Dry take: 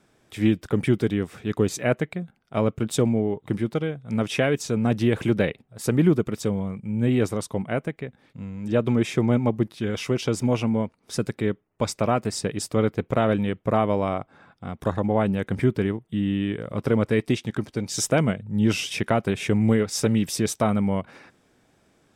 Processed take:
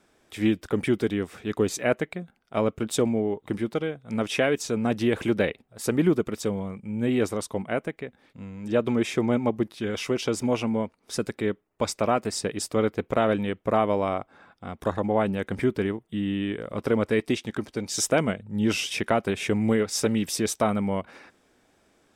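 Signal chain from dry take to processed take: bell 130 Hz -9 dB 1.1 oct

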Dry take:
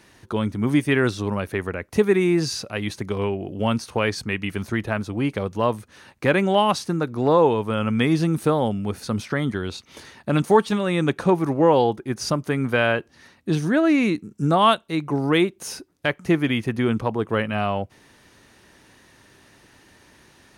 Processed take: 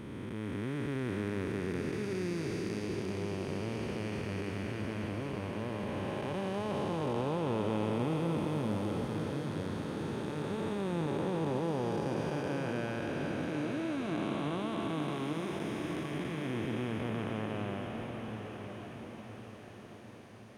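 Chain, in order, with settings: time blur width 1.12 s; diffused feedback echo 1.012 s, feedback 51%, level -6.5 dB; gain -8.5 dB

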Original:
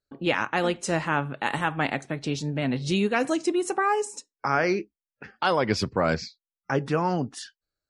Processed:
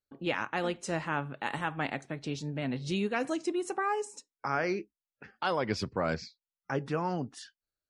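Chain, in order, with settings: high shelf 8400 Hz -4 dB; gain -7 dB

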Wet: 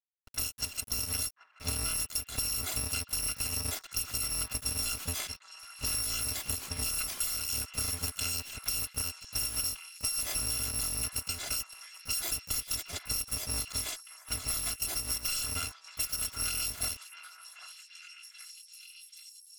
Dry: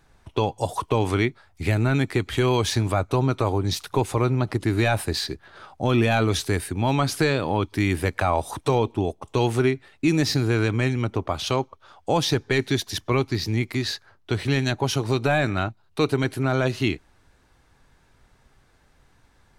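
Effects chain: FFT order left unsorted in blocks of 256 samples; low-pass opened by the level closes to 1600 Hz, open at -21 dBFS; compressor 12:1, threshold -24 dBFS, peak gain reduction 9 dB; harmoniser +12 st -12 dB; sample gate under -42 dBFS; delay with a stepping band-pass 0.783 s, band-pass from 1300 Hz, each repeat 0.7 oct, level -6 dB; gain -5 dB

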